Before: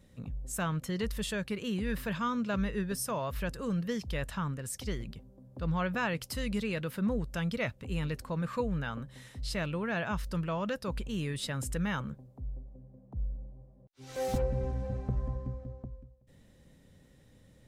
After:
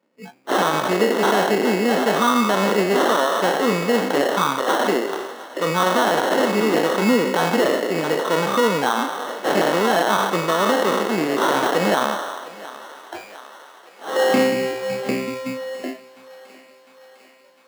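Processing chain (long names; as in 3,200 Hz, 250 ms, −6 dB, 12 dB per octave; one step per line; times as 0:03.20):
peak hold with a decay on every bin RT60 1.03 s
dynamic equaliser 680 Hz, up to −5 dB, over −45 dBFS, Q 0.89
noise reduction from a noise print of the clip's start 28 dB
in parallel at 0 dB: downward compressor, threshold −46 dBFS, peak gain reduction 19.5 dB
on the sum: sample-rate reduction 2,400 Hz, jitter 0%
high-pass filter 270 Hz 24 dB per octave
high-shelf EQ 3,900 Hz −8.5 dB
on a send: feedback echo with a high-pass in the loop 704 ms, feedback 68%, high-pass 380 Hz, level −19 dB
on the sum: boost into a limiter +24 dB
level −6 dB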